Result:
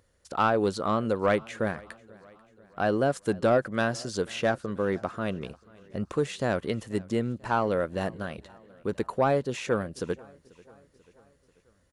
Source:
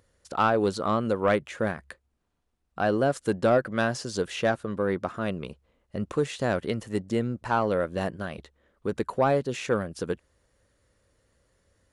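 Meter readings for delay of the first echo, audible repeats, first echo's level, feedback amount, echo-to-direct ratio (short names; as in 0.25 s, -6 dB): 0.489 s, 3, -24.0 dB, 55%, -22.5 dB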